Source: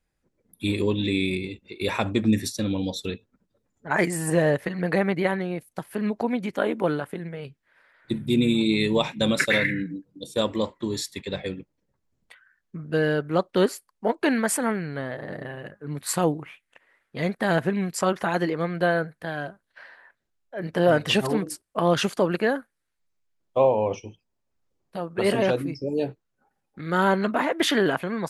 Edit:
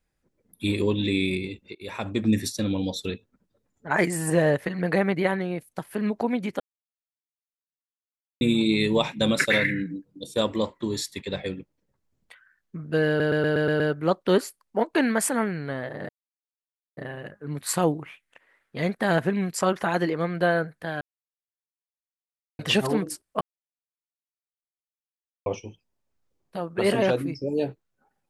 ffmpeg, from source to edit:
-filter_complex "[0:a]asplit=15[a][b][c][d][e][f][g][h][i][j][k][l][m][n][o];[a]atrim=end=1.75,asetpts=PTS-STARTPTS,afade=t=out:st=1.746:d=0.004:c=hsin:silence=0.11885[p];[b]atrim=start=1.75:end=6.6,asetpts=PTS-STARTPTS,afade=t=in:d=0.63:silence=0.11885,afade=t=out:st=4.846:d=0.004:c=hsin[q];[c]atrim=start=6.6:end=8.41,asetpts=PTS-STARTPTS,volume=0[r];[d]atrim=start=8.41:end=13.202,asetpts=PTS-STARTPTS,afade=t=in:d=0.004:c=hsin[s];[e]atrim=start=13.078:end=13.202[t];[f]atrim=start=13.078:end=13.202[u];[g]atrim=start=13.078:end=13.202[v];[h]atrim=start=13.078:end=13.202[w];[i]atrim=start=13.078:end=13.202[x];[j]atrim=start=13.078:end=15.37,asetpts=PTS-STARTPTS,afade=t=out:st=2.288:d=0.004:c=hsin,apad=pad_dur=0.88[y];[k]atrim=start=15.37:end=19.41,asetpts=PTS-STARTPTS,afade=t=in:d=0.004:c=hsin,afade=t=out:st=4.036:d=0.004:c=hsin[z];[l]atrim=start=19.41:end=20.99,asetpts=PTS-STARTPTS,volume=0[aa];[m]atrim=start=20.99:end=21.81,asetpts=PTS-STARTPTS,afade=t=in:d=0.004:c=hsin,afade=t=out:st=0.816:d=0.004:c=hsin[ab];[n]atrim=start=21.81:end=23.86,asetpts=PTS-STARTPTS,volume=0[ac];[o]atrim=start=23.86,asetpts=PTS-STARTPTS,afade=t=in:d=0.004:c=hsin[ad];[p][q][r][s]concat=n=4:v=0:a=1[ae];[ae][t]acrossfade=d=0.004:c1=hsin:c2=hsin[af];[af][u]acrossfade=d=0.004:c1=hsin:c2=hsin[ag];[ag][v]acrossfade=d=0.004:c1=hsin:c2=hsin[ah];[ah][w]acrossfade=d=0.004:c1=hsin:c2=hsin[ai];[ai][x]acrossfade=d=0.004:c1=hsin:c2=hsin[aj];[y][z][aa][ab][ac][ad]concat=n=6:v=0:a=1[ak];[aj][ak]acrossfade=d=0.004:c1=hsin:c2=hsin"

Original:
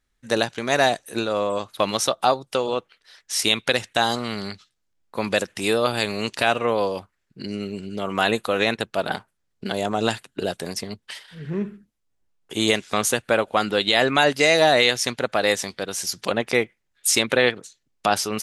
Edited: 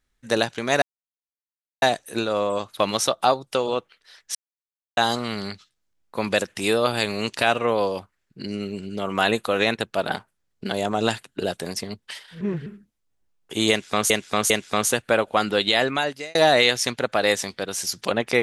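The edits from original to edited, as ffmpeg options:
-filter_complex "[0:a]asplit=9[a][b][c][d][e][f][g][h][i];[a]atrim=end=0.82,asetpts=PTS-STARTPTS,afade=t=out:st=0.816:d=0.004:c=hsin,apad=pad_dur=1[j];[b]atrim=start=0.82:end=3.35,asetpts=PTS-STARTPTS,afade=t=in:d=0.004:c=hsin,afade=t=out:st=2.526:d=0.004:c=hsin[k];[c]atrim=start=3.35:end=3.97,asetpts=PTS-STARTPTS,volume=0[l];[d]atrim=start=3.97:end=11.412,asetpts=PTS-STARTPTS,afade=t=in:d=0.004:c=hsin[m];[e]atrim=start=11.408:end=11.662,asetpts=PTS-STARTPTS,areverse[n];[f]atrim=start=11.658:end=13.102[o];[g]atrim=start=12.698:end=13.102[p];[h]atrim=start=12.698:end=14.55,asetpts=PTS-STARTPTS,afade=t=out:st=1.162:d=0.69[q];[i]atrim=start=14.55,asetpts=PTS-STARTPTS,afade=t=in:d=0.004:c=hsin[r];[j][k][l][m]concat=n=4:v=0:a=1[s];[s][n]acrossfade=d=0.004:c1=hsin:c2=hsin[t];[t][o]acrossfade=d=0.004:c1=hsin:c2=hsin[u];[u][p]acrossfade=d=0.004:c1=hsin:c2=hsin[v];[q][r]concat=n=2:v=0:a=1[w];[v][w]acrossfade=d=0.004:c1=hsin:c2=hsin"

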